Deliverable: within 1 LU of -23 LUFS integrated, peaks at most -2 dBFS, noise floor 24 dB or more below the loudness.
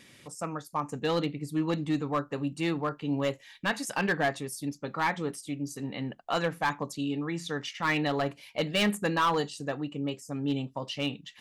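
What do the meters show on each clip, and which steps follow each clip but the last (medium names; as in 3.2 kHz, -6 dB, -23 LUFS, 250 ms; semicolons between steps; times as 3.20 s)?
clipped samples 0.7%; clipping level -20.5 dBFS; loudness -31.0 LUFS; peak level -20.5 dBFS; loudness target -23.0 LUFS
-> clip repair -20.5 dBFS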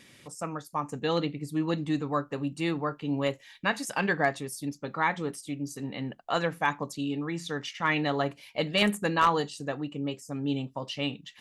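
clipped samples 0.0%; loudness -30.5 LUFS; peak level -11.5 dBFS; loudness target -23.0 LUFS
-> trim +7.5 dB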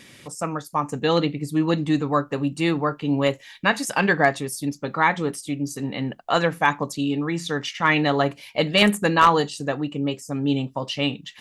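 loudness -23.0 LUFS; peak level -4.0 dBFS; noise floor -48 dBFS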